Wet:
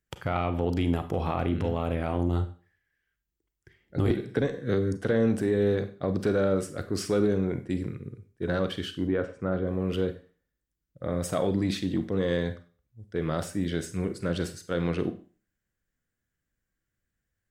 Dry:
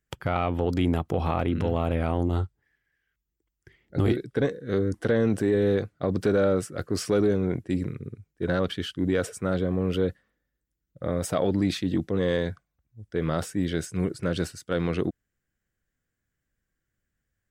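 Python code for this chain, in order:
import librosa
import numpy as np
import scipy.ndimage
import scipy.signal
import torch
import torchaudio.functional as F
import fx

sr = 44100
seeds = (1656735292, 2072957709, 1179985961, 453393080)

y = fx.lowpass(x, sr, hz=1800.0, slope=12, at=(9.07, 9.67))
y = fx.rev_schroeder(y, sr, rt60_s=0.39, comb_ms=31, drr_db=9.5)
y = fx.band_squash(y, sr, depth_pct=100, at=(4.1, 4.97))
y = F.gain(torch.from_numpy(y), -2.5).numpy()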